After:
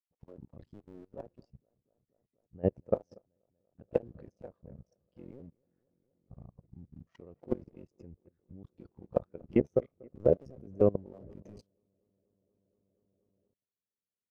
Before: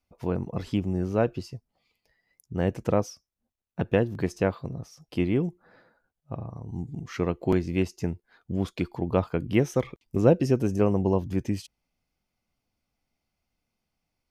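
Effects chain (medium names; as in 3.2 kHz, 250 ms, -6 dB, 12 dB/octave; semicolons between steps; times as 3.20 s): cycle switcher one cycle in 2, muted; dynamic bell 550 Hz, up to +5 dB, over -36 dBFS, Q 1.3; in parallel at -9.5 dB: saturation -14 dBFS, distortion -13 dB; on the sum: bucket-brigade echo 239 ms, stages 4096, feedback 78%, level -20 dB; level held to a coarse grid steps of 19 dB; spectral contrast expander 1.5:1; trim -6 dB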